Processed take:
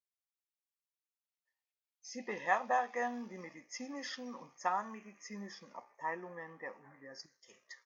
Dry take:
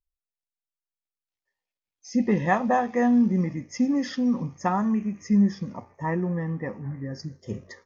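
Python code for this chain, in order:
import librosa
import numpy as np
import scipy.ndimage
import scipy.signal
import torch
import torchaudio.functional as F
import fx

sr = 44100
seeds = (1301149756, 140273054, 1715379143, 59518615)

y = fx.highpass(x, sr, hz=fx.steps((0.0, 700.0), (7.26, 1500.0)), slope=12)
y = y * librosa.db_to_amplitude(-6.0)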